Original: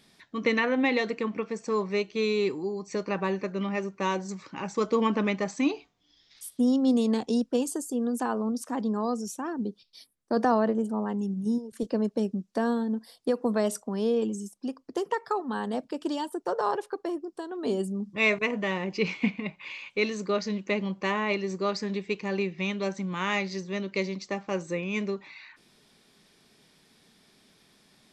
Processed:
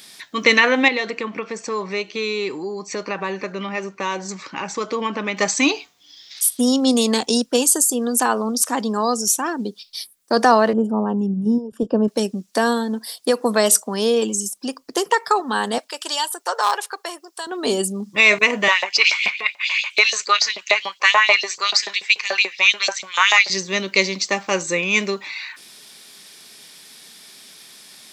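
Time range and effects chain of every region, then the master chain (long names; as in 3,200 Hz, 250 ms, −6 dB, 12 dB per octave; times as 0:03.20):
0:00.88–0:05.37: downward compressor 2 to 1, threshold −33 dBFS + low-pass filter 2,600 Hz 6 dB per octave
0:10.73–0:12.08: moving average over 21 samples + low-shelf EQ 240 Hz +8.5 dB
0:15.78–0:17.47: high-pass filter 800 Hz + hard clipping −21.5 dBFS
0:18.68–0:23.50: high-shelf EQ 11,000 Hz −5 dB + auto-filter high-pass saw up 6.9 Hz 570–4,900 Hz
whole clip: spectral tilt +3.5 dB per octave; boost into a limiter +13 dB; level −1 dB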